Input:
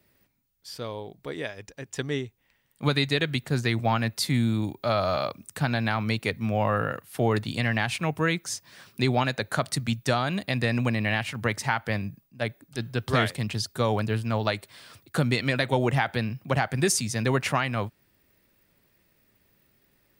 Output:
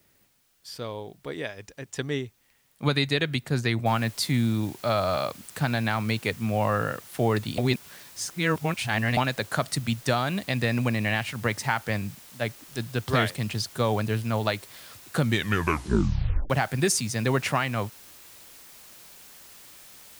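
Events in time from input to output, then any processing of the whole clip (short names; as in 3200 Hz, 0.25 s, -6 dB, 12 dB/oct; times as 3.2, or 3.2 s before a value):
3.86 noise floor step -68 dB -49 dB
7.58–9.17 reverse
15.21 tape stop 1.29 s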